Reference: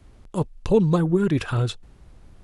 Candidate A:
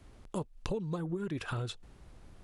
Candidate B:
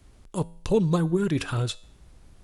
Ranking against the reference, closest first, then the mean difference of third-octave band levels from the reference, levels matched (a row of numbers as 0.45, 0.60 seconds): B, A; 2.0, 3.5 decibels